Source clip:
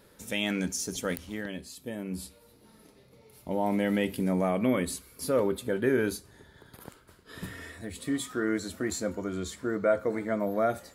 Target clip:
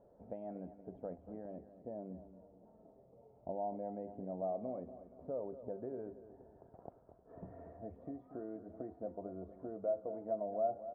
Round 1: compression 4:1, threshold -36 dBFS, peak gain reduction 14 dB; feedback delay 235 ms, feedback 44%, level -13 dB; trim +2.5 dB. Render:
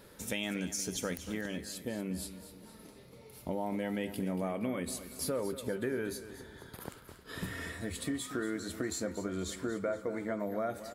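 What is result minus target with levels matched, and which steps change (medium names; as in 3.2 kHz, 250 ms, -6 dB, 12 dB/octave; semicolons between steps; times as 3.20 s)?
1 kHz band -5.0 dB
add after compression: four-pole ladder low-pass 740 Hz, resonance 75%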